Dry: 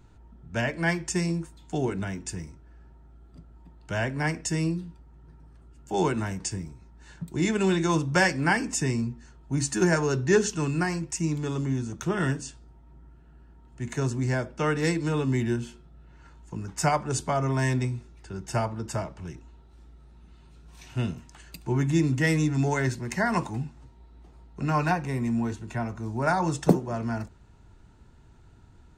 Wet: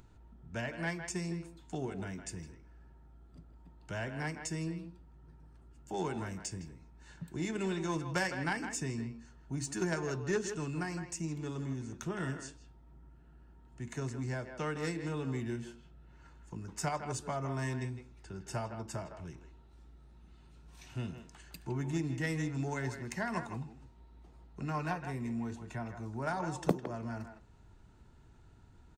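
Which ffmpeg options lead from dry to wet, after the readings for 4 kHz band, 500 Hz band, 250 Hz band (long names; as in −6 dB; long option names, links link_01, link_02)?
−10.0 dB, −10.5 dB, −10.5 dB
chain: -filter_complex "[0:a]acompressor=threshold=-39dB:ratio=1.5,aeval=exprs='0.178*(cos(1*acos(clip(val(0)/0.178,-1,1)))-cos(1*PI/2))+0.0282*(cos(3*acos(clip(val(0)/0.178,-1,1)))-cos(3*PI/2))':channel_layout=same,asplit=2[link_01][link_02];[link_02]adelay=160,highpass=300,lowpass=3400,asoftclip=type=hard:threshold=-22.5dB,volume=-8dB[link_03];[link_01][link_03]amix=inputs=2:normalize=0,acompressor=mode=upward:threshold=-56dB:ratio=2.5"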